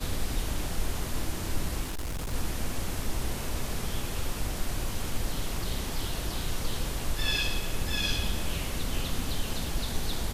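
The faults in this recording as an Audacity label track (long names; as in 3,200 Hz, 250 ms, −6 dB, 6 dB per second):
1.830000	2.340000	clipping −29.5 dBFS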